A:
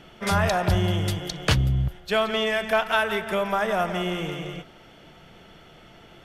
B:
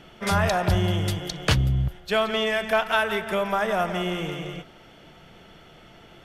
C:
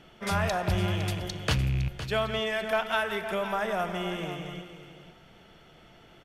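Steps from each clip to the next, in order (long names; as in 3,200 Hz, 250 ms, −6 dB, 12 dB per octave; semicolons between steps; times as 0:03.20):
no processing that can be heard
loose part that buzzes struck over −27 dBFS, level −24 dBFS; single-tap delay 510 ms −12 dB; four-comb reverb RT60 1.2 s, combs from 27 ms, DRR 18.5 dB; level −5.5 dB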